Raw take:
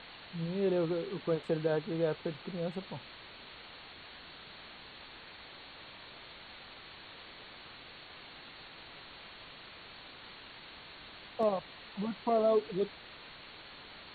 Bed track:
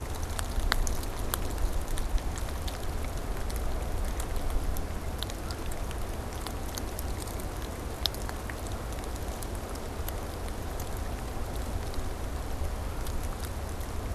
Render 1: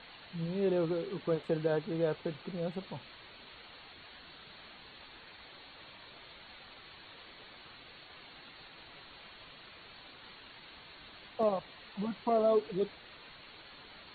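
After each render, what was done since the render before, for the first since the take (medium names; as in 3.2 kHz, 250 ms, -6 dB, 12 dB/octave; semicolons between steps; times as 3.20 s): noise reduction 6 dB, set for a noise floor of -52 dBFS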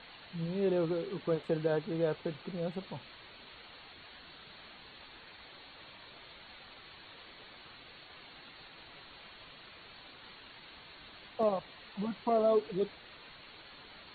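no audible change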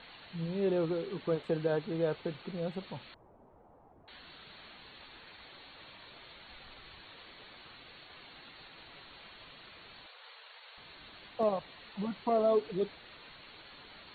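3.14–4.08 s: Chebyshev low-pass 830 Hz, order 3; 6.50–7.01 s: bass shelf 65 Hz +12 dB; 10.06–10.78 s: elliptic high-pass 460 Hz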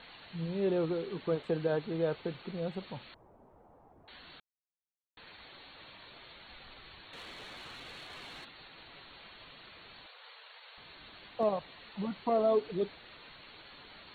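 4.40–5.17 s: mute; 7.13–8.45 s: waveshaping leveller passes 2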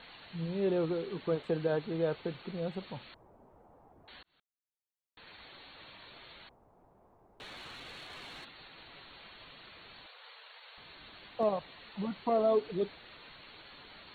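4.23–5.35 s: fade in; 6.49–7.40 s: room tone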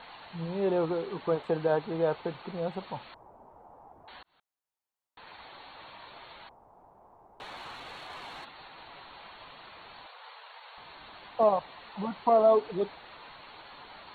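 peaking EQ 890 Hz +11 dB 1.2 oct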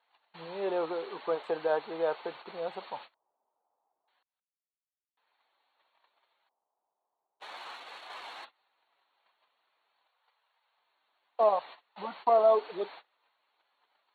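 gate -44 dBFS, range -27 dB; high-pass 470 Hz 12 dB/octave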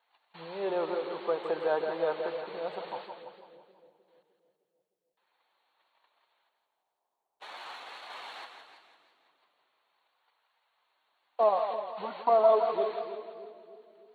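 on a send: two-band feedback delay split 520 Hz, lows 306 ms, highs 168 ms, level -8.5 dB; on the sum: modulated delay 163 ms, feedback 51%, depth 128 cents, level -12 dB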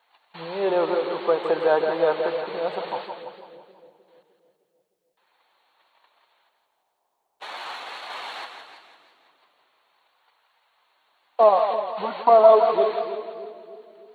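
trim +9 dB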